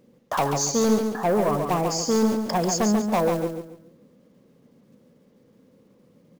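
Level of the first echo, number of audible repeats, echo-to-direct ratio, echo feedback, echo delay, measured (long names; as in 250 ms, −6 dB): −6.0 dB, 3, −5.5 dB, 31%, 140 ms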